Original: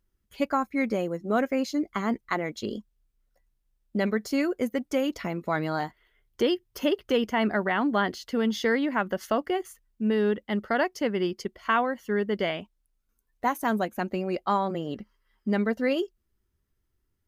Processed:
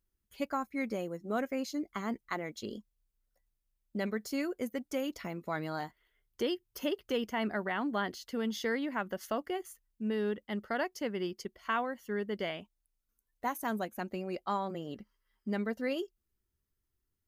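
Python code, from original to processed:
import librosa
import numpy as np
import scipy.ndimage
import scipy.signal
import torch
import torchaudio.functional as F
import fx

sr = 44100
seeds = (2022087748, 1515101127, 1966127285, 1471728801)

y = fx.high_shelf(x, sr, hz=6100.0, db=7.5)
y = y * librosa.db_to_amplitude(-8.5)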